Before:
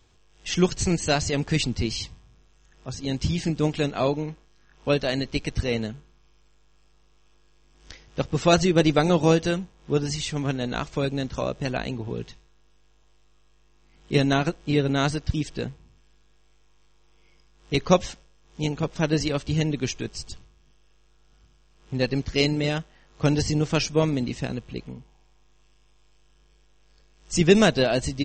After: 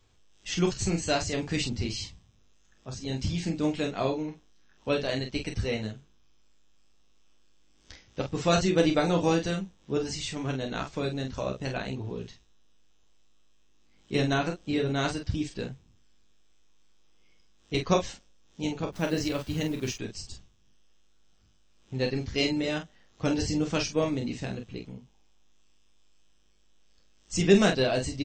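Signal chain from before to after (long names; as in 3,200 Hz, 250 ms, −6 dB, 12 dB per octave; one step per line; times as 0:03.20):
0:18.90–0:19.95: hold until the input has moved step −40.5 dBFS
ambience of single reflections 10 ms −7 dB, 30 ms −8.5 dB, 46 ms −7 dB
level −6 dB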